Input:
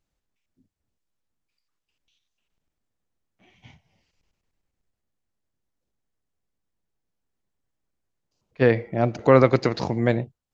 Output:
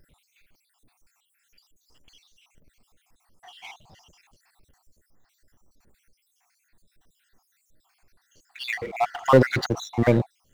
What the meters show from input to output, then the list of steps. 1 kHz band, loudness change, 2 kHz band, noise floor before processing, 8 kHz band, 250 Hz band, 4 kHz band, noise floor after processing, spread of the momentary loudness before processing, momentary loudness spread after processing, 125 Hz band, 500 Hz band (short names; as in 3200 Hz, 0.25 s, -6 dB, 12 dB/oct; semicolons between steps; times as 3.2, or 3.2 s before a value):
+1.0 dB, -2.0 dB, +0.5 dB, -82 dBFS, n/a, -2.0 dB, +4.0 dB, -72 dBFS, 9 LU, 12 LU, -1.5 dB, -3.0 dB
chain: random spectral dropouts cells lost 69%; power-law curve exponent 0.7